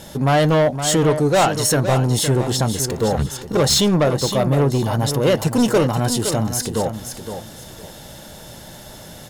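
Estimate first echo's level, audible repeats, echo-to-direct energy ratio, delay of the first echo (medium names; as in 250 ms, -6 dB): -9.0 dB, 3, -8.5 dB, 515 ms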